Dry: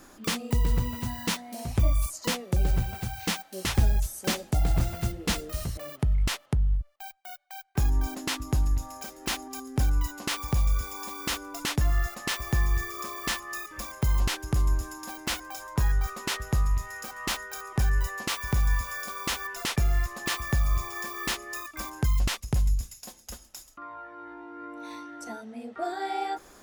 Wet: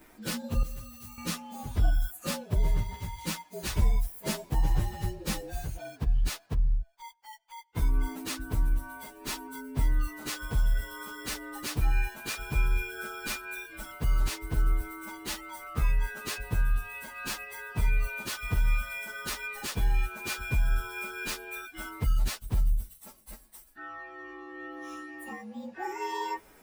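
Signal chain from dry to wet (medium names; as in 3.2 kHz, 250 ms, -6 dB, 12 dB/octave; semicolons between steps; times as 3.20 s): frequency axis rescaled in octaves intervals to 116%; 0.63–1.18 s: pre-emphasis filter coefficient 0.8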